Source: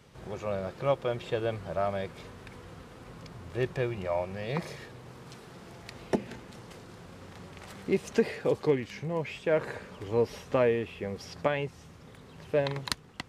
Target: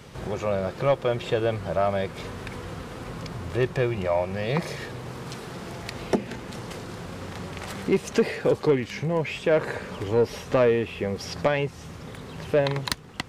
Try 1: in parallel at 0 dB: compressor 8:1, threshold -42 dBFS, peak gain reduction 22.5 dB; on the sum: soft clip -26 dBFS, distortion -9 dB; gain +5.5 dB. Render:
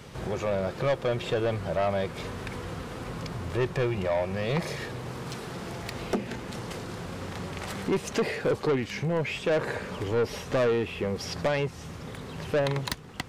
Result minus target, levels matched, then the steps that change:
soft clip: distortion +10 dB
change: soft clip -16.5 dBFS, distortion -19 dB

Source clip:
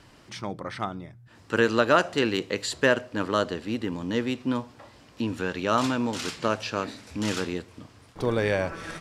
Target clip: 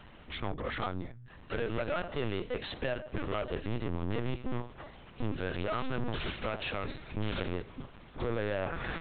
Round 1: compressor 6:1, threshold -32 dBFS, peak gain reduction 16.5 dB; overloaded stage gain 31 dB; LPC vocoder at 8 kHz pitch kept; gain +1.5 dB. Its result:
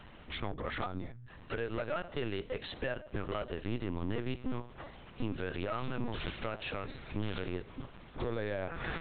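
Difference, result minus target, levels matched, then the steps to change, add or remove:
compressor: peak gain reduction +6.5 dB
change: compressor 6:1, threshold -24.5 dBFS, peak gain reduction 10.5 dB

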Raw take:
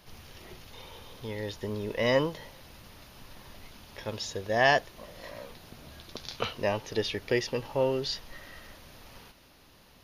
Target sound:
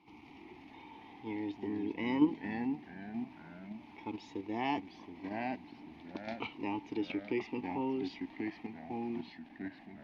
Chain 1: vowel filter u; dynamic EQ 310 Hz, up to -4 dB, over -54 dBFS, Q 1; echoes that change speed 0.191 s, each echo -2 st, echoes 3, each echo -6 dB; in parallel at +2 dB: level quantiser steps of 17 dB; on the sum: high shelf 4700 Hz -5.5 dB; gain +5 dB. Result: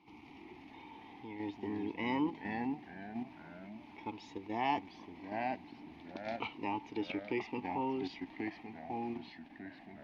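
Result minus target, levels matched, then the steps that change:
1000 Hz band +4.5 dB
change: dynamic EQ 840 Hz, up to -4 dB, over -54 dBFS, Q 1

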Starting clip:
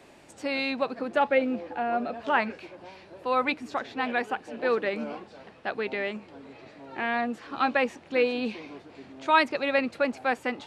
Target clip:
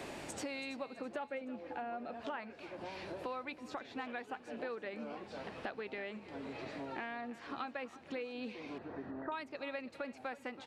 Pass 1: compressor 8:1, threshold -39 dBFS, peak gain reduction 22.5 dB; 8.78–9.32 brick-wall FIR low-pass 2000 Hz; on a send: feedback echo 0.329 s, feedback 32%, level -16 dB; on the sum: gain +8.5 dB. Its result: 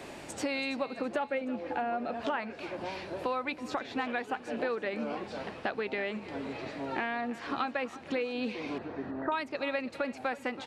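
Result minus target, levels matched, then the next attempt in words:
compressor: peak gain reduction -9 dB
compressor 8:1, threshold -49.5 dBFS, peak gain reduction 32 dB; 8.78–9.32 brick-wall FIR low-pass 2000 Hz; on a send: feedback echo 0.329 s, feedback 32%, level -16 dB; on the sum: gain +8.5 dB

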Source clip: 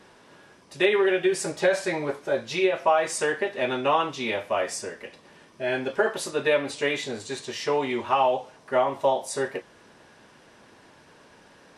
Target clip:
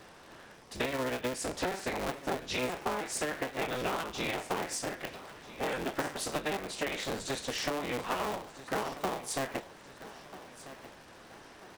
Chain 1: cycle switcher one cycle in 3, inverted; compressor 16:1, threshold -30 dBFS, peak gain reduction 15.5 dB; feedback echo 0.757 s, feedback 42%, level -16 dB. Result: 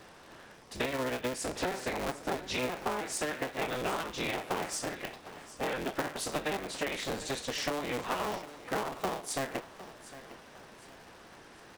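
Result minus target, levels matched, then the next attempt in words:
echo 0.534 s early
cycle switcher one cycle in 3, inverted; compressor 16:1, threshold -30 dBFS, peak gain reduction 15.5 dB; feedback echo 1.291 s, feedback 42%, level -16 dB

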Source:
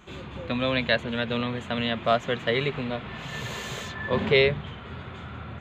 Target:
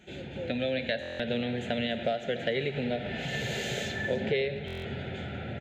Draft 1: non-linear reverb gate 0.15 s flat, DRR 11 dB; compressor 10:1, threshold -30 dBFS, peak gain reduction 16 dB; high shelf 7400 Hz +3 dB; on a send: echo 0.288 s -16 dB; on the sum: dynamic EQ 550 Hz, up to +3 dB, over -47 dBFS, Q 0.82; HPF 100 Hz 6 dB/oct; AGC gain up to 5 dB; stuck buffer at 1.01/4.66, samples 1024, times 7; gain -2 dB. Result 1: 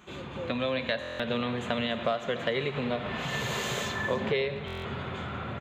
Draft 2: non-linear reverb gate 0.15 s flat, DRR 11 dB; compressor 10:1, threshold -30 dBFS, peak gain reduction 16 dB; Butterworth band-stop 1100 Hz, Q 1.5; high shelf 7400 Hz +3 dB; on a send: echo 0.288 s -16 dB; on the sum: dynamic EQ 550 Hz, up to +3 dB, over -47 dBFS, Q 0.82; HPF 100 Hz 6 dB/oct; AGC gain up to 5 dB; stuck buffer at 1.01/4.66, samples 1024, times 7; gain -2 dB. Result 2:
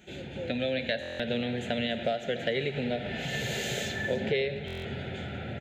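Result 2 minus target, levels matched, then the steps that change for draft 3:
8000 Hz band +3.5 dB
change: high shelf 7400 Hz -5 dB

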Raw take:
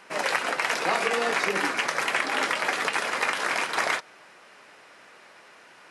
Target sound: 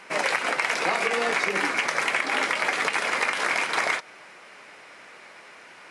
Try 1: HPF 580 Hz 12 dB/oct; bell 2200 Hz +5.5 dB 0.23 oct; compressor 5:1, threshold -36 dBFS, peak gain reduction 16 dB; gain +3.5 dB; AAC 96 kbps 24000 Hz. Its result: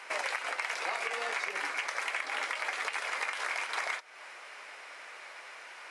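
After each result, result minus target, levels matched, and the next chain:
compressor: peak gain reduction +9.5 dB; 500 Hz band -3.0 dB
HPF 580 Hz 12 dB/oct; bell 2200 Hz +5.5 dB 0.23 oct; compressor 5:1, threshold -24 dBFS, peak gain reduction 6.5 dB; gain +3.5 dB; AAC 96 kbps 24000 Hz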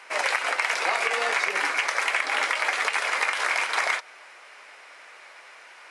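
500 Hz band -3.5 dB
bell 2200 Hz +5.5 dB 0.23 oct; compressor 5:1, threshold -24 dBFS, peak gain reduction 6.5 dB; gain +3.5 dB; AAC 96 kbps 24000 Hz

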